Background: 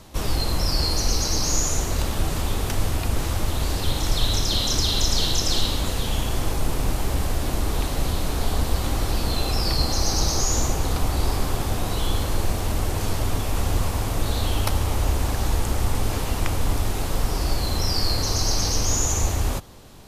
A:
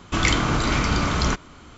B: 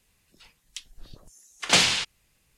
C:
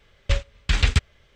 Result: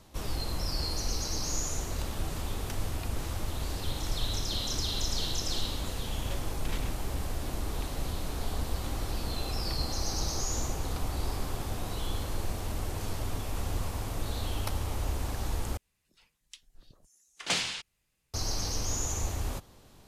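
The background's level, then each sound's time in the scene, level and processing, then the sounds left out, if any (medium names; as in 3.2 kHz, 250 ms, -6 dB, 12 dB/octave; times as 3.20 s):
background -10 dB
5.96 s: add C -13 dB + compressor with a negative ratio -22 dBFS, ratio -0.5
15.77 s: replace with B -10.5 dB
not used: A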